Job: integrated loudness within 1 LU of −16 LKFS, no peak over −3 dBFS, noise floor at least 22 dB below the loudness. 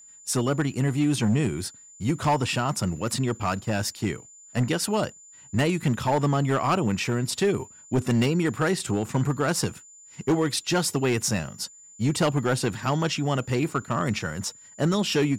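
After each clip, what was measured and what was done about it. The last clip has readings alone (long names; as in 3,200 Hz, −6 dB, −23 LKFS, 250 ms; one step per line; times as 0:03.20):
share of clipped samples 1.5%; peaks flattened at −16.5 dBFS; interfering tone 7,100 Hz; level of the tone −47 dBFS; integrated loudness −26.0 LKFS; sample peak −16.5 dBFS; target loudness −16.0 LKFS
→ clipped peaks rebuilt −16.5 dBFS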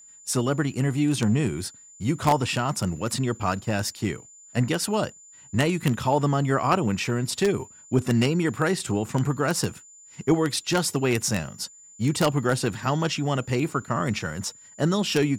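share of clipped samples 0.0%; interfering tone 7,100 Hz; level of the tone −47 dBFS
→ notch filter 7,100 Hz, Q 30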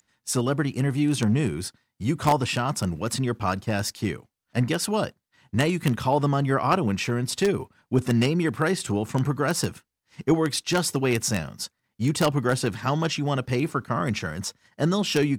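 interfering tone none found; integrated loudness −25.5 LKFS; sample peak −7.5 dBFS; target loudness −16.0 LKFS
→ level +9.5 dB
brickwall limiter −3 dBFS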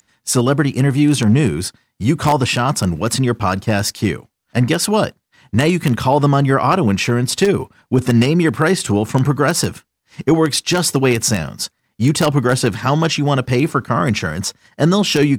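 integrated loudness −16.5 LKFS; sample peak −3.0 dBFS; background noise floor −70 dBFS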